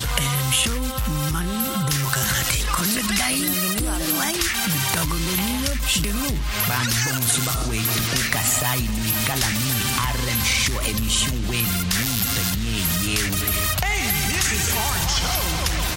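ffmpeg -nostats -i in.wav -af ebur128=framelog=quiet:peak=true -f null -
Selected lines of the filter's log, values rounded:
Integrated loudness:
  I:         -20.7 LUFS
  Threshold: -30.7 LUFS
Loudness range:
  LRA:         0.9 LU
  Threshold: -40.7 LUFS
  LRA low:   -21.1 LUFS
  LRA high:  -20.2 LUFS
True peak:
  Peak:       -2.8 dBFS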